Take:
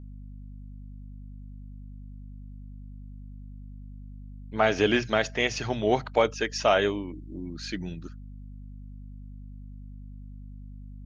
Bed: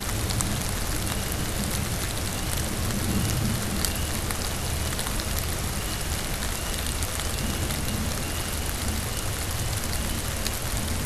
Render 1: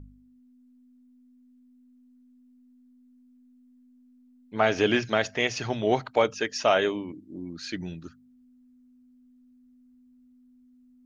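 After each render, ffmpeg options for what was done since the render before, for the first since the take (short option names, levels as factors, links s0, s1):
-af "bandreject=f=50:t=h:w=4,bandreject=f=100:t=h:w=4,bandreject=f=150:t=h:w=4,bandreject=f=200:t=h:w=4"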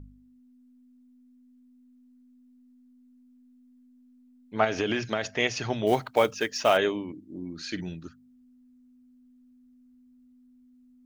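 -filter_complex "[0:a]asettb=1/sr,asplit=3[s0][s1][s2];[s0]atrim=end=4.644[s3];[s1]atrim=start=4.64:end=5.25,asetpts=PTS-STARTPTS,afade=t=in:d=0.004:c=qsin,afade=t=out:st=0.606:d=0.004:c=qsin,acompressor=threshold=0.0794:ratio=6:attack=3.2:release=140:knee=1:detection=peak[s4];[s2]atrim=start=5.246[s5];[s3][s4]acrossfade=d=0.004:c1=hsin:c2=qsin[s6];[s6][s5]acrossfade=d=0.004:c1=qsin:c2=hsin,asplit=3[s7][s8][s9];[s7]afade=t=out:st=5.86:d=0.02[s10];[s8]acrusher=bits=6:mode=log:mix=0:aa=0.000001,afade=t=in:st=5.86:d=0.02,afade=t=out:st=6.76:d=0.02[s11];[s9]afade=t=in:st=6.76:d=0.02[s12];[s10][s11][s12]amix=inputs=3:normalize=0,asettb=1/sr,asplit=3[s13][s14][s15];[s13]atrim=end=7.364[s16];[s14]atrim=start=7.36:end=7.89,asetpts=PTS-STARTPTS,afade=t=in:d=0.004:c=qsin,afade=t=out:st=0.526:d=0.004:c=qsin,asplit=2[s17][s18];[s18]adelay=49,volume=0.237[s19];[s17][s19]amix=inputs=2:normalize=0,atrim=end_sample=23373[s20];[s15]atrim=start=7.886[s21];[s16][s20]acrossfade=d=0.004:c1=hsin:c2=qsin[s22];[s22][s21]acrossfade=d=0.004:c1=qsin:c2=hsin"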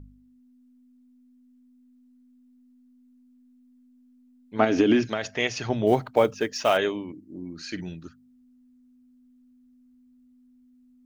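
-filter_complex "[0:a]asettb=1/sr,asplit=3[s0][s1][s2];[s0]atrim=end=4.594[s3];[s1]atrim=start=4.59:end=5.07,asetpts=PTS-STARTPTS,afade=t=in:d=0.004:c=qsin,afade=t=out:st=0.476:d=0.004:c=qsin,equalizer=f=280:w=1.5:g=14.5[s4];[s2]atrim=start=5.066[s5];[s3][s4]acrossfade=d=0.004:c1=hsin:c2=qsin[s6];[s6][s5]acrossfade=d=0.004:c1=qsin:c2=hsin,asettb=1/sr,asplit=3[s7][s8][s9];[s7]atrim=end=5.694[s10];[s8]atrim=start=5.69:end=6.53,asetpts=PTS-STARTPTS,afade=t=in:d=0.004:c=qsin,afade=t=out:st=0.836:d=0.004:c=qsin,tiltshelf=f=970:g=5[s11];[s9]atrim=start=6.526[s12];[s10][s11]acrossfade=d=0.004:c1=hsin:c2=qsin[s13];[s13][s12]acrossfade=d=0.004:c1=qsin:c2=hsin,asettb=1/sr,asplit=3[s14][s15][s16];[s14]atrim=end=7.114[s17];[s15]atrim=start=7.11:end=7.81,asetpts=PTS-STARTPTS,afade=t=in:d=0.004:c=qsin,afade=t=out:st=0.696:d=0.004:c=qsin,equalizer=f=3500:w=6.8:g=-9[s18];[s16]atrim=start=7.806[s19];[s17][s18]acrossfade=d=0.004:c1=hsin:c2=qsin[s20];[s20][s19]acrossfade=d=0.004:c1=qsin:c2=hsin"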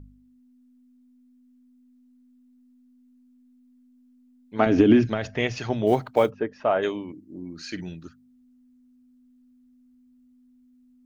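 -filter_complex "[0:a]asettb=1/sr,asplit=3[s0][s1][s2];[s0]atrim=end=4.664[s3];[s1]atrim=start=4.66:end=5.58,asetpts=PTS-STARTPTS,afade=t=in:d=0.004:c=qsin,afade=t=out:st=0.916:d=0.004:c=qsin,aemphasis=mode=reproduction:type=bsi[s4];[s2]atrim=start=5.576[s5];[s3][s4]acrossfade=d=0.004:c1=hsin:c2=qsin[s6];[s6][s5]acrossfade=d=0.004:c1=qsin:c2=hsin,asplit=3[s7][s8][s9];[s7]afade=t=out:st=6.29:d=0.02[s10];[s8]lowpass=1300,afade=t=in:st=6.29:d=0.02,afade=t=out:st=6.82:d=0.02[s11];[s9]afade=t=in:st=6.82:d=0.02[s12];[s10][s11][s12]amix=inputs=3:normalize=0"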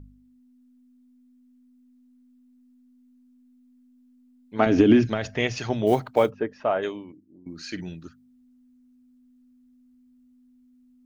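-filter_complex "[0:a]asettb=1/sr,asplit=3[s0][s1][s2];[s0]atrim=end=4.624[s3];[s1]atrim=start=4.62:end=6,asetpts=PTS-STARTPTS,afade=t=in:d=0.004:c=qsin,afade=t=out:st=1.376:d=0.004:c=qsin,highshelf=f=5600:g=6.5[s4];[s2]atrim=start=5.996[s5];[s3][s4]acrossfade=d=0.004:c1=hsin:c2=qsin[s6];[s6][s5]acrossfade=d=0.004:c1=qsin:c2=hsin,asplit=2[s7][s8];[s7]atrim=end=7.46,asetpts=PTS-STARTPTS,afade=t=out:st=6.52:d=0.94:silence=0.133352[s9];[s8]atrim=start=7.46,asetpts=PTS-STARTPTS,afade=t=in:d=0.004:c=hsin:silence=0.133352[s10];[s9][s10]concat=n=2:v=0:a=1"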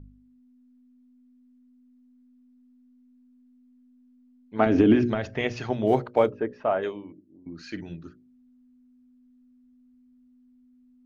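-af "aemphasis=mode=reproduction:type=75kf,bandreject=f=60:t=h:w=6,bandreject=f=120:t=h:w=6,bandreject=f=180:t=h:w=6,bandreject=f=240:t=h:w=6,bandreject=f=300:t=h:w=6,bandreject=f=360:t=h:w=6,bandreject=f=420:t=h:w=6,bandreject=f=480:t=h:w=6,bandreject=f=540:t=h:w=6,bandreject=f=600:t=h:w=6"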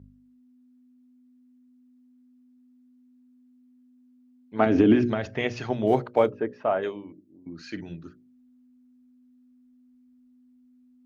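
-af "highpass=71"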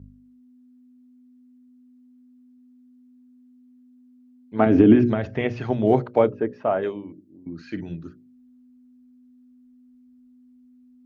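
-filter_complex "[0:a]acrossover=split=3400[s0][s1];[s1]acompressor=threshold=0.00141:ratio=4:attack=1:release=60[s2];[s0][s2]amix=inputs=2:normalize=0,lowshelf=f=450:g=6.5"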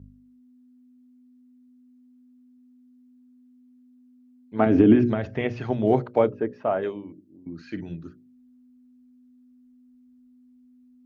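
-af "volume=0.794"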